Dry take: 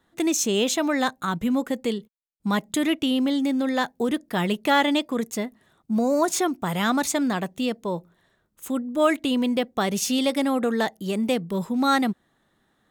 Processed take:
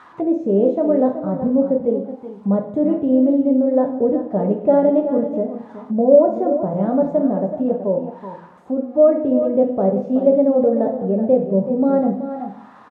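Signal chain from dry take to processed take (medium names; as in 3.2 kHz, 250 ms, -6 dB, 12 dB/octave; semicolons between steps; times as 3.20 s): zero-crossing glitches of -22.5 dBFS; high-pass 67 Hz; bass shelf 390 Hz +10 dB; delay 376 ms -10.5 dB; two-slope reverb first 0.63 s, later 1.8 s, DRR 1 dB; touch-sensitive low-pass 590–1300 Hz down, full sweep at -16 dBFS; trim -5.5 dB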